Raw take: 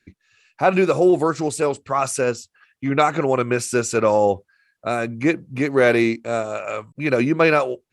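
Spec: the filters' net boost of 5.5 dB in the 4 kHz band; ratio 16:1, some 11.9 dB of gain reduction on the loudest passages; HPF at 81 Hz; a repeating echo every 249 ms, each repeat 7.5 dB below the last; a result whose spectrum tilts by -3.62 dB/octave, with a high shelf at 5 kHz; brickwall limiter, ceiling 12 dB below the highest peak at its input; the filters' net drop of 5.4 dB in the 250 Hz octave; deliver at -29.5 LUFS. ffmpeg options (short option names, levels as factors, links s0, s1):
-af "highpass=81,equalizer=f=250:t=o:g=-8.5,equalizer=f=4000:t=o:g=4,highshelf=f=5000:g=6,acompressor=threshold=0.0708:ratio=16,alimiter=limit=0.075:level=0:latency=1,aecho=1:1:249|498|747|996|1245:0.422|0.177|0.0744|0.0312|0.0131,volume=1.41"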